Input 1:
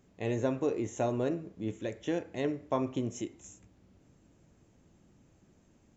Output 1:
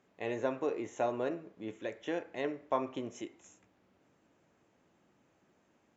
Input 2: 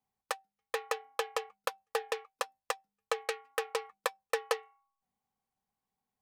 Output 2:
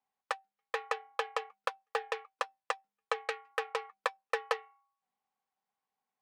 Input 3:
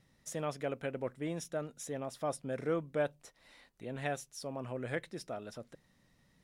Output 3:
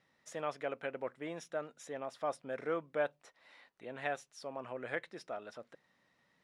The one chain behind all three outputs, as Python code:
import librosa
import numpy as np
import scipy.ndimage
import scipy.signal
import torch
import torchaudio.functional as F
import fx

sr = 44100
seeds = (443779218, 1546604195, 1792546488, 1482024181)

y = fx.bandpass_q(x, sr, hz=1300.0, q=0.55)
y = F.gain(torch.from_numpy(y), 2.0).numpy()